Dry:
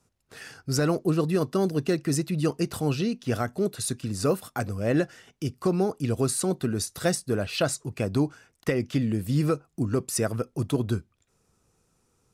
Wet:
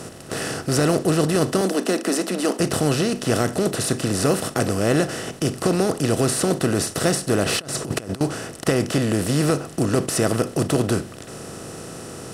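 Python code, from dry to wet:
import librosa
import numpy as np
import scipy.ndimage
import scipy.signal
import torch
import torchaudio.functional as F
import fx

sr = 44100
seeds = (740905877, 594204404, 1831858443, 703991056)

y = fx.bin_compress(x, sr, power=0.4)
y = fx.cheby1_highpass(y, sr, hz=190.0, order=6, at=(1.61, 2.6))
y = fx.over_compress(y, sr, threshold_db=-26.0, ratio=-0.5, at=(7.44, 8.21))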